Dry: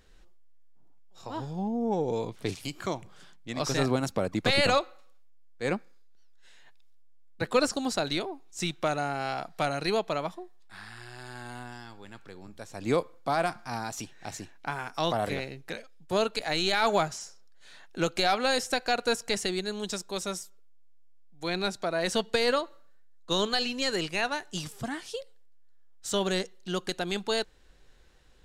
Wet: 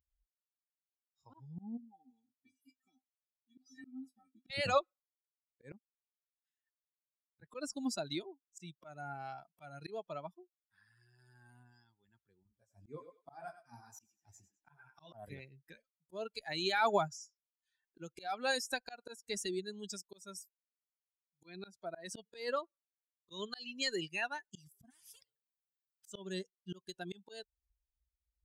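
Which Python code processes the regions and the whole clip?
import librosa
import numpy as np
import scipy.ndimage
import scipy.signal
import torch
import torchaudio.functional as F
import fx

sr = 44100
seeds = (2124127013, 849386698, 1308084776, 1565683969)

y = fx.chain(x, sr, fx.peak_eq(hz=230.0, db=2.0, octaves=0.25),
    fx.comb_fb(f0_hz=260.0, decay_s=0.17, harmonics='odd', damping=0.0, mix_pct=100), at=(1.77, 4.5))
y = fx.chain(y, sr, fx.echo_thinned(ms=101, feedback_pct=42, hz=350.0, wet_db=-6.5),
    fx.detune_double(cents=45), at=(12.43, 15.13))
y = fx.chain(y, sr, fx.high_shelf(hz=3900.0, db=-9.0),
    fx.spectral_comp(ratio=4.0), at=(24.9, 26.07))
y = fx.bin_expand(y, sr, power=2.0)
y = scipy.signal.sosfilt(scipy.signal.butter(2, 46.0, 'highpass', fs=sr, output='sos'), y)
y = fx.auto_swell(y, sr, attack_ms=302.0)
y = F.gain(torch.from_numpy(y), -1.5).numpy()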